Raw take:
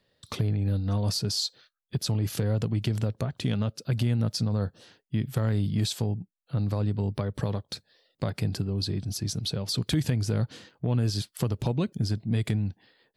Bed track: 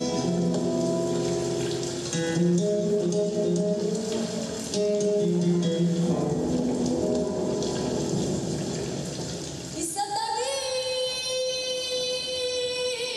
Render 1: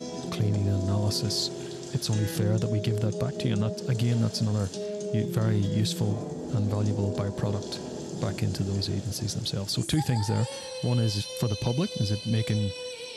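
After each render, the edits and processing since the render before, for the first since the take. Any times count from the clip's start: add bed track -9 dB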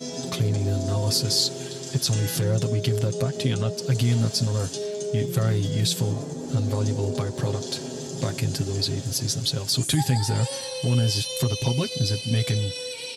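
treble shelf 3.2 kHz +7.5 dB; comb 7.5 ms, depth 76%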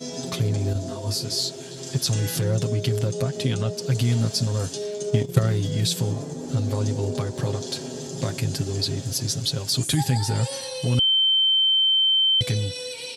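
0.73–1.78 s: detune thickener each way 40 cents; 4.98–5.47 s: transient shaper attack +7 dB, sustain -11 dB; 10.99–12.41 s: bleep 3.1 kHz -16 dBFS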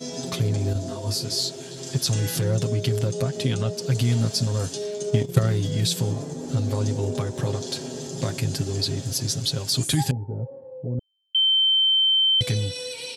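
6.97–7.47 s: band-stop 4.5 kHz, Q 7.9; 10.11–11.35 s: four-pole ladder low-pass 650 Hz, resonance 30%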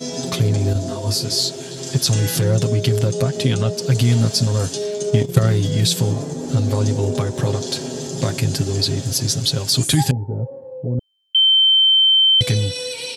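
trim +6 dB; peak limiter -1 dBFS, peak gain reduction 2.5 dB

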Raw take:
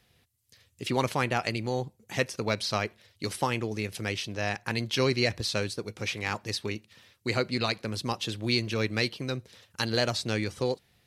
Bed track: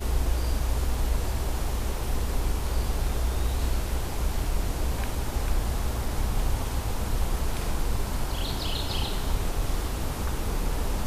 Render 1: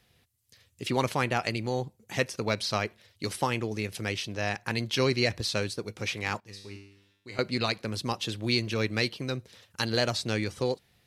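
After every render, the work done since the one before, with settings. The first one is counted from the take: 6.40–7.39 s: feedback comb 99 Hz, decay 0.77 s, mix 90%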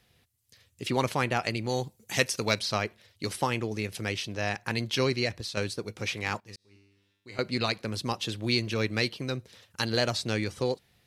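1.69–2.59 s: treble shelf 2.7 kHz +10 dB; 4.93–5.57 s: fade out, to -7.5 dB; 6.56–7.56 s: fade in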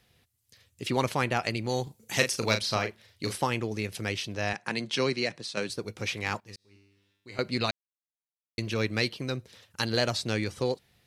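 1.83–3.38 s: doubling 36 ms -7 dB; 4.53–5.70 s: elliptic band-pass 150–9500 Hz; 7.71–8.58 s: mute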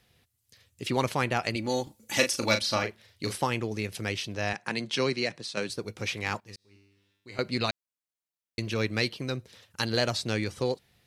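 1.55–2.83 s: comb 3.5 ms, depth 60%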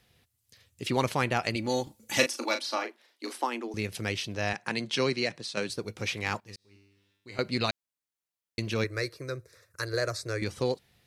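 2.26–3.74 s: rippled Chebyshev high-pass 230 Hz, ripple 6 dB; 8.84–10.42 s: static phaser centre 830 Hz, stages 6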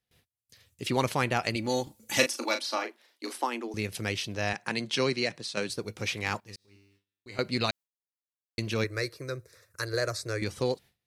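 gate with hold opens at -53 dBFS; treble shelf 8.7 kHz +4 dB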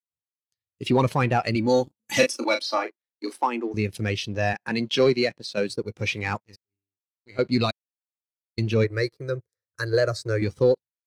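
waveshaping leveller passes 3; spectral contrast expander 1.5:1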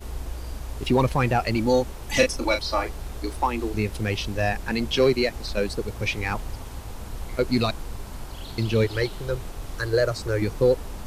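add bed track -7.5 dB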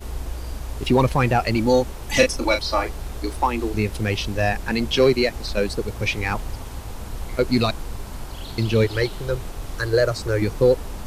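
trim +3 dB

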